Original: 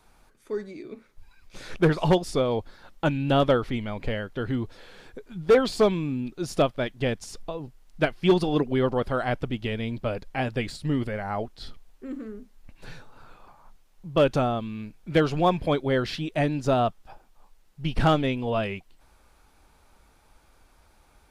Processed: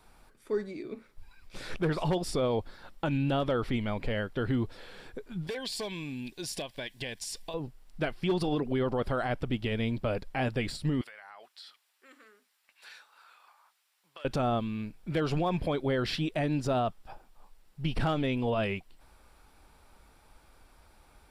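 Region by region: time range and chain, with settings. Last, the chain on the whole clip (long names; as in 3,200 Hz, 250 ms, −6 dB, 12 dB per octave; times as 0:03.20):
0:05.47–0:07.54: tilt shelving filter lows −8 dB, about 1,200 Hz + downward compressor 5 to 1, threshold −33 dBFS + Butterworth band-reject 1,300 Hz, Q 3.6
0:11.01–0:14.25: high-pass filter 1,400 Hz + downward compressor 12 to 1, threshold −44 dBFS
whole clip: notch filter 6,400 Hz, Q 9.2; brickwall limiter −21 dBFS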